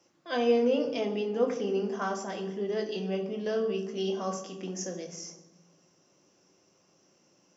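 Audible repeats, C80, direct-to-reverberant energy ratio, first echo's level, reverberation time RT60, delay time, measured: none, 10.5 dB, 2.0 dB, none, 1.1 s, none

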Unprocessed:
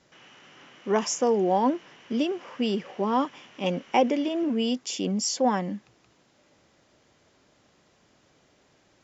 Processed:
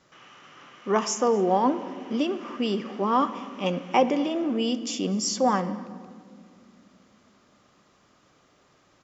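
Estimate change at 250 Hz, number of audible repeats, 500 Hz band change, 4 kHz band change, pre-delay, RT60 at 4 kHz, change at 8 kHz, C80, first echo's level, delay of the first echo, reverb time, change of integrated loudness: +0.5 dB, 1, +0.5 dB, 0.0 dB, 6 ms, 1.2 s, n/a, 14.5 dB, -24.0 dB, 0.244 s, 2.2 s, +1.0 dB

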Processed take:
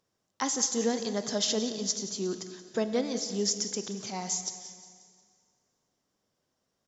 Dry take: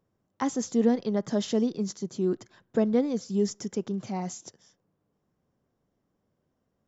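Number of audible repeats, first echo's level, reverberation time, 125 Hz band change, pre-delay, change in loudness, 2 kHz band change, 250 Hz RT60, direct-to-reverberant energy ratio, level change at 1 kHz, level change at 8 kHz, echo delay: 4, -14.0 dB, 2.0 s, -7.0 dB, 6 ms, -2.0 dB, +3.0 dB, 2.1 s, 8.5 dB, -0.5 dB, n/a, 0.178 s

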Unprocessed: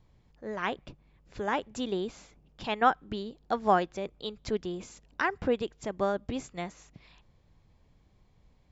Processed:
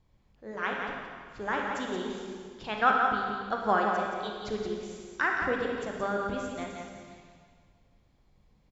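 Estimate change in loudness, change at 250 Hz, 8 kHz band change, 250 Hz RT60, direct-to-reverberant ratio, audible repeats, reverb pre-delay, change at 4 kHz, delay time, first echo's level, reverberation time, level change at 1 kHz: +1.5 dB, -1.0 dB, n/a, 1.9 s, -1.0 dB, 1, 21 ms, -0.5 dB, 0.174 s, -6.0 dB, 1.9 s, +1.5 dB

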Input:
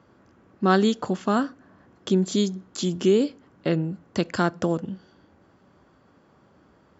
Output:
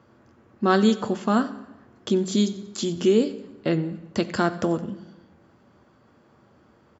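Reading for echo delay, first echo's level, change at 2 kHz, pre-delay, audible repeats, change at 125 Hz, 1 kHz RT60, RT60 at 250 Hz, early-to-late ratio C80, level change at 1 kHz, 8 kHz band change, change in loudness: 91 ms, -19.5 dB, +0.5 dB, 8 ms, 3, -1.5 dB, 0.95 s, 1.1 s, 15.5 dB, +0.5 dB, n/a, +0.5 dB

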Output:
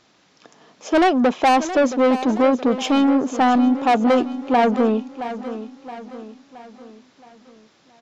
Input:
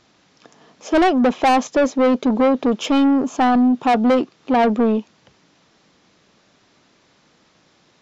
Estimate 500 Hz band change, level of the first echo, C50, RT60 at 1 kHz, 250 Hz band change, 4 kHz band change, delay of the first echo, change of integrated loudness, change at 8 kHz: 0.0 dB, -12.5 dB, none, none, -1.5 dB, +0.5 dB, 0.671 s, -1.0 dB, n/a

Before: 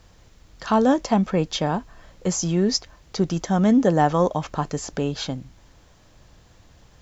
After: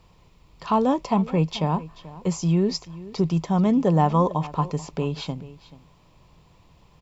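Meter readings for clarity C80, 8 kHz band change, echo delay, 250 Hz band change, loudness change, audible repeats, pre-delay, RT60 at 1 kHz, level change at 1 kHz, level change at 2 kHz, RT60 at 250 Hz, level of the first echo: none, n/a, 0.434 s, -1.5 dB, -1.0 dB, 1, none, none, -0.5 dB, -7.0 dB, none, -18.0 dB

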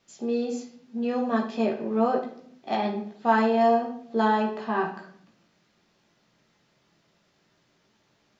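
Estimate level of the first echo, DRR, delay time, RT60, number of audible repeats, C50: none, -1.0 dB, none, 0.60 s, none, 7.5 dB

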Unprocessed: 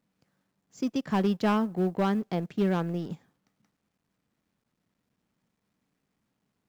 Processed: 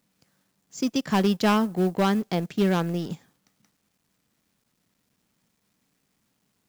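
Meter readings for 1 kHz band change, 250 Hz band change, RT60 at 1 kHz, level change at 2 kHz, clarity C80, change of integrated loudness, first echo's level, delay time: +4.5 dB, +3.5 dB, none, +6.0 dB, none, +4.0 dB, none, none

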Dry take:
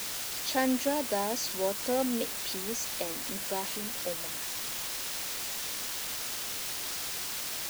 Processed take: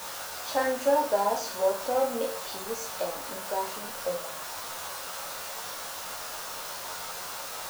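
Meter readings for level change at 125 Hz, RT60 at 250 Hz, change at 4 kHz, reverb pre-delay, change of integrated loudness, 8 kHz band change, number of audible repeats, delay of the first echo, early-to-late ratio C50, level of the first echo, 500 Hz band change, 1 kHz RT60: -3.5 dB, 0.40 s, -3.5 dB, 11 ms, +0.5 dB, -3.5 dB, none, none, 7.5 dB, none, +6.0 dB, 0.40 s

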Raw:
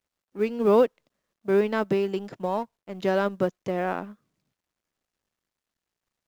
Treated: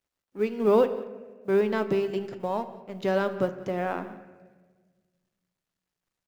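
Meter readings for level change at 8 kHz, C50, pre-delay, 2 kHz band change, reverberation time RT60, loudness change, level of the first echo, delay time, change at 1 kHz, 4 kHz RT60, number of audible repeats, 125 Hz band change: n/a, 12.0 dB, 7 ms, -1.5 dB, 1.4 s, -1.5 dB, -20.0 dB, 0.184 s, -1.5 dB, 0.80 s, 1, -1.5 dB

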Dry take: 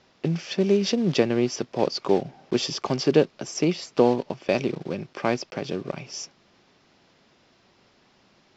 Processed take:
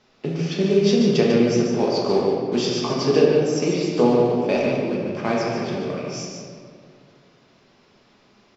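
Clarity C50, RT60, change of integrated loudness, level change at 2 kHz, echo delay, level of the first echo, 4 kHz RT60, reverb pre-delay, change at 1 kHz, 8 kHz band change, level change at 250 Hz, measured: -1.0 dB, 2.2 s, +4.5 dB, +3.0 dB, 0.147 s, -5.0 dB, 1.2 s, 5 ms, +3.5 dB, n/a, +5.0 dB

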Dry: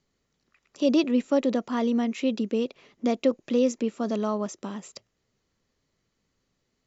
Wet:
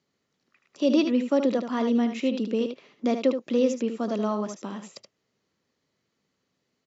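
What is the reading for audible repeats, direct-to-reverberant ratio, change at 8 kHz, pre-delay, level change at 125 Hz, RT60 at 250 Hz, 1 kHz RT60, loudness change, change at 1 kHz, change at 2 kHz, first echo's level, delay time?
1, none, n/a, none, n/a, none, none, +0.5 dB, +0.5 dB, +0.5 dB, -8.0 dB, 76 ms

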